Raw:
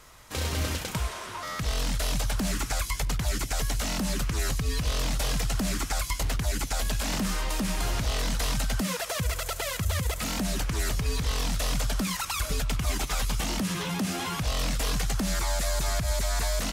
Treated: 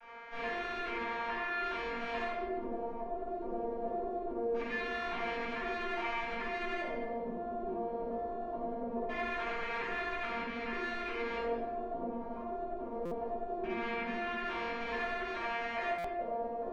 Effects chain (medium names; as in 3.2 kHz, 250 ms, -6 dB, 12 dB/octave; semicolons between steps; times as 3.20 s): vocoder on a broken chord bare fifth, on A#3, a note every 426 ms; compression 3:1, threshold -32 dBFS, peak gain reduction 9 dB; resonant low shelf 340 Hz -9.5 dB, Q 1.5; valve stage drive 45 dB, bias 0.45; LFO low-pass square 0.22 Hz 560–2200 Hz; reverberation RT60 1.1 s, pre-delay 5 ms, DRR -12.5 dB; buffer glitch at 13.05/15.98 s, samples 256, times 10; trim -5.5 dB